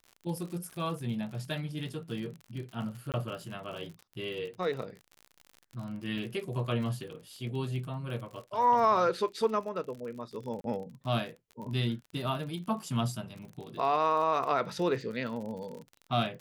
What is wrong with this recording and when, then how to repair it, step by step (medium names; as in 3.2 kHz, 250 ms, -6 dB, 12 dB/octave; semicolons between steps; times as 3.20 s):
crackle 46 per s -39 dBFS
3.12–3.14 s: dropout 18 ms
6.18 s: dropout 2.3 ms
10.61–10.64 s: dropout 32 ms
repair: de-click; interpolate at 3.12 s, 18 ms; interpolate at 6.18 s, 2.3 ms; interpolate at 10.61 s, 32 ms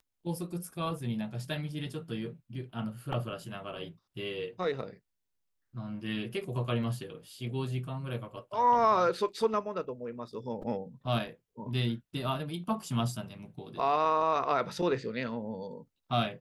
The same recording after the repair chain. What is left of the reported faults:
nothing left